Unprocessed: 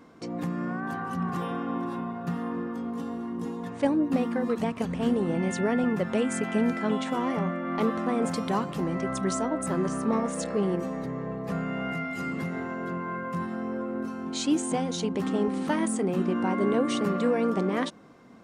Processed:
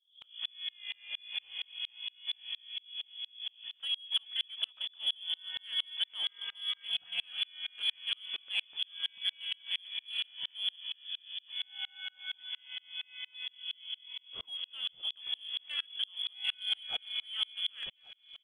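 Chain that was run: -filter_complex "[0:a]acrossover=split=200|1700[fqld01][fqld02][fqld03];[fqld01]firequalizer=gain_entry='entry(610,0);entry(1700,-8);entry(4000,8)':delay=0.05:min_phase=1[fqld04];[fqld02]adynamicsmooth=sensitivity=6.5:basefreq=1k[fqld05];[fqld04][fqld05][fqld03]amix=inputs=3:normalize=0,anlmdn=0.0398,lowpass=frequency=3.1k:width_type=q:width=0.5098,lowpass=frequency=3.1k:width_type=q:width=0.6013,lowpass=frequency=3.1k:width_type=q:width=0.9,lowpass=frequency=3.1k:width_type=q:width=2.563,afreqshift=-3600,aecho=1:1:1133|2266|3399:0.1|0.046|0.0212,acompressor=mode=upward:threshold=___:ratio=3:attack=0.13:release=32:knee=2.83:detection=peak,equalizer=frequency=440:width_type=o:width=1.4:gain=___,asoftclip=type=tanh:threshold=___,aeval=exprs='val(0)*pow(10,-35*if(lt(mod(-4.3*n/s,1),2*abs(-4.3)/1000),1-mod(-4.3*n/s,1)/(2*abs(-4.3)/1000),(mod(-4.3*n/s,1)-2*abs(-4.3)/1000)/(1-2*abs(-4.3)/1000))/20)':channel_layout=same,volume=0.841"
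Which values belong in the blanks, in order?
0.0141, -3.5, 0.188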